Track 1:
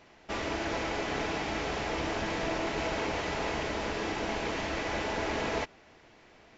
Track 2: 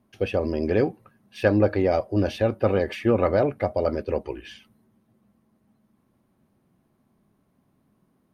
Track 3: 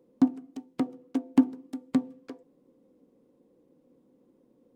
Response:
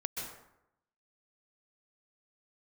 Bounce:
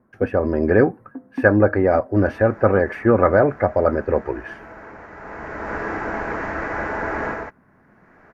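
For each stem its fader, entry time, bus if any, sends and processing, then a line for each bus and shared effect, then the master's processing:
0.0 dB, 1.85 s, no send, auto duck -14 dB, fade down 0.30 s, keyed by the second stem
+3.0 dB, 0.00 s, no send, dry
-8.0 dB, 0.00 s, no send, LPF 1100 Hz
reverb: off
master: resonant high shelf 2300 Hz -13 dB, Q 3; AGC gain up to 5.5 dB

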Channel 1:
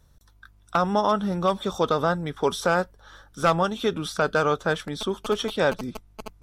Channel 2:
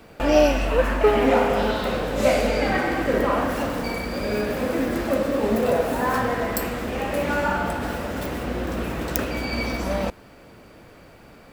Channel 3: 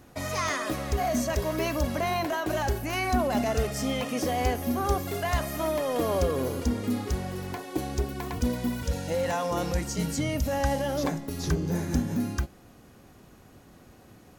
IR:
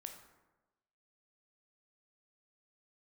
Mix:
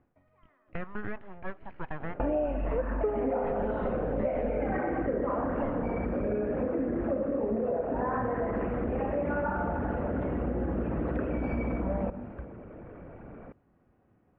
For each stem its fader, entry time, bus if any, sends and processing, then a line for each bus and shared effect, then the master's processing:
-10.5 dB, 0.00 s, muted 4.48–5.62, send -16 dB, HPF 370 Hz 12 dB/oct; full-wave rectifier
-0.5 dB, 2.00 s, send -4 dB, formant sharpening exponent 1.5
-13.5 dB, 0.00 s, no send, auto duck -22 dB, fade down 0.25 s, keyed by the first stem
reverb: on, RT60 1.1 s, pre-delay 13 ms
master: Bessel low-pass 1500 Hz, order 8; compressor 6:1, threshold -27 dBFS, peak gain reduction 15.5 dB

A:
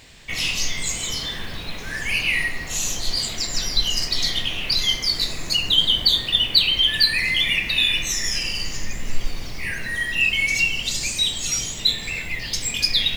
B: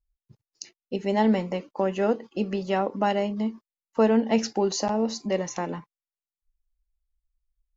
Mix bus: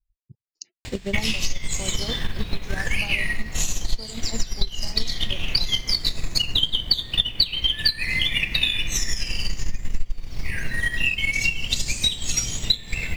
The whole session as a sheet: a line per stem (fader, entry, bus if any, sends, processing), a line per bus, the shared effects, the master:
+1.0 dB, 0.85 s, no send, dry
-10.5 dB, 0.00 s, no send, reverb removal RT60 0.74 s; spectral gate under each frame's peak -25 dB strong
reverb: off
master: transient shaper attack +11 dB, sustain -5 dB; low shelf 180 Hz +9.5 dB; compressor 4:1, threshold -19 dBFS, peak gain reduction 21.5 dB

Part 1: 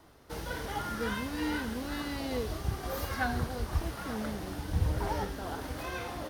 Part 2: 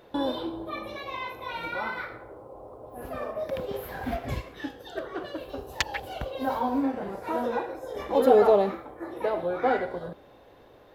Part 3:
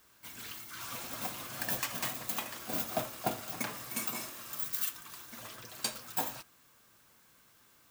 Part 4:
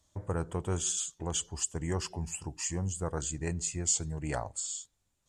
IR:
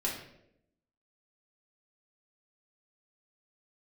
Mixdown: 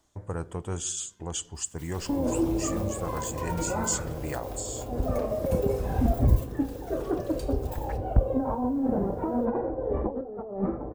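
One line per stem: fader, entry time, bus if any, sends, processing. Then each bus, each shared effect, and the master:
-13.5 dB, 0.00 s, no send, auto duck -23 dB, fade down 0.50 s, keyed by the fourth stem
-2.5 dB, 1.95 s, send -18 dB, negative-ratio compressor -31 dBFS, ratio -1; LPF 1100 Hz 12 dB/oct; tilt -4 dB/oct
-7.0 dB, 1.55 s, send -8.5 dB, compressor 2:1, threshold -46 dBFS, peak gain reduction 10.5 dB
-1.0 dB, 0.00 s, send -21.5 dB, dry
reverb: on, RT60 0.80 s, pre-delay 4 ms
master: dry

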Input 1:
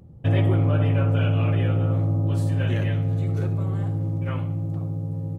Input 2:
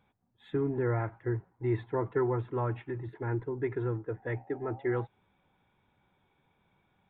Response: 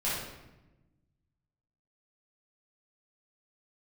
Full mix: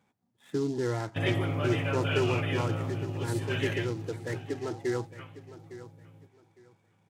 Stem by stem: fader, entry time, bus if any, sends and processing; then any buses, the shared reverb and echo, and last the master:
-2.0 dB, 0.90 s, no send, echo send -18.5 dB, tilt shelf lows -7 dB, about 1100 Hz; gate -28 dBFS, range -15 dB
-1.5 dB, 0.00 s, no send, echo send -15 dB, bell 240 Hz +3.5 dB 1.4 oct; noise-modulated delay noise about 4700 Hz, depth 0.031 ms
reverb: off
echo: feedback echo 0.858 s, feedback 22%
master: HPF 110 Hz; bell 2000 Hz +2.5 dB 0.34 oct

